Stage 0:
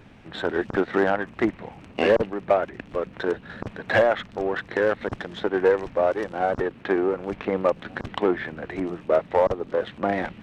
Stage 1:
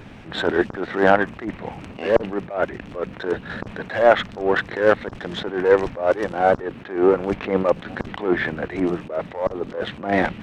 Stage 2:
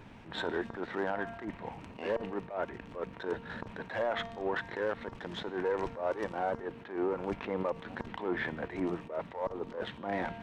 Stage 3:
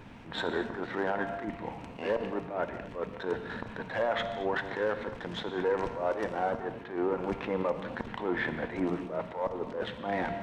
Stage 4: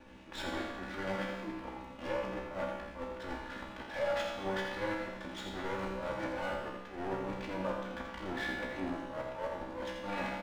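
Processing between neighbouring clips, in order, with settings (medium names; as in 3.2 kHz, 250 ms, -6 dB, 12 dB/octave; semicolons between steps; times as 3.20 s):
attacks held to a fixed rise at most 130 dB/s; trim +8.5 dB
peaking EQ 950 Hz +8 dB 0.22 oct; feedback comb 230 Hz, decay 1.1 s, mix 60%; peak limiter -19.5 dBFS, peak gain reduction 11 dB; trim -3.5 dB
gated-style reverb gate 260 ms flat, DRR 8.5 dB; trim +2.5 dB
comb filter that takes the minimum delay 3.5 ms; feedback comb 64 Hz, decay 0.85 s, harmonics all, mix 90%; delay 84 ms -7.5 dB; trim +7 dB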